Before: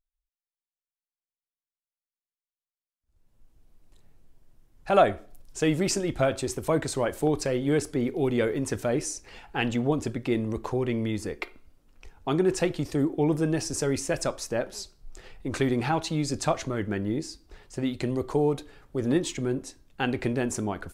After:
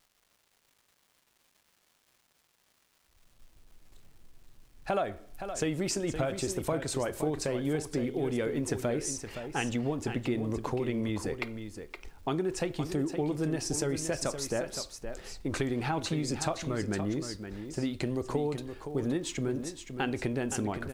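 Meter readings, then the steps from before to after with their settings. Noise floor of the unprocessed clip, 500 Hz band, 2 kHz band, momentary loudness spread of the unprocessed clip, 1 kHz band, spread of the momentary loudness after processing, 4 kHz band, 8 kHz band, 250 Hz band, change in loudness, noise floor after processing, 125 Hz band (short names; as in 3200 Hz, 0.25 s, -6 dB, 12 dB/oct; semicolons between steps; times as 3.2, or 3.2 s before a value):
under -85 dBFS, -5.5 dB, -4.5 dB, 11 LU, -6.0 dB, 8 LU, -3.0 dB, -2.0 dB, -4.5 dB, -5.0 dB, -71 dBFS, -4.0 dB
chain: compressor 5:1, threshold -28 dBFS, peak gain reduction 13 dB; crackle 590/s -55 dBFS; echo 0.518 s -9 dB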